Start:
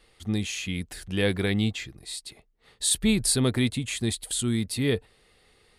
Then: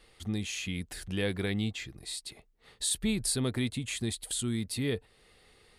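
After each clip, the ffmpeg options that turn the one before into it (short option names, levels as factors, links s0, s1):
-af "acompressor=threshold=0.0112:ratio=1.5"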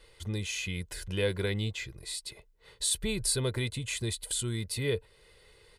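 -af "aecho=1:1:2:0.64"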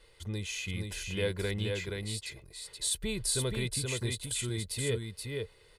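-af "aecho=1:1:476:0.631,volume=0.75"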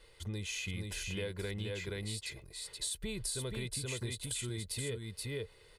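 -af "acompressor=threshold=0.0178:ratio=6"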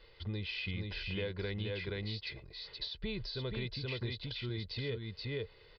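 -af "aresample=11025,aresample=44100,volume=1.12"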